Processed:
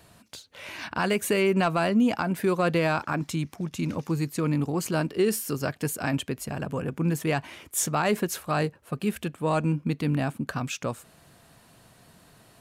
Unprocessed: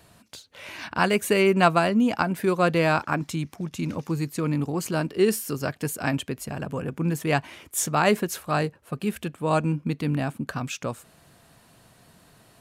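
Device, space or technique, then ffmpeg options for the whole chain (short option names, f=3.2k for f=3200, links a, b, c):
soft clipper into limiter: -af "asoftclip=type=tanh:threshold=-7dB,alimiter=limit=-15dB:level=0:latency=1:release=60"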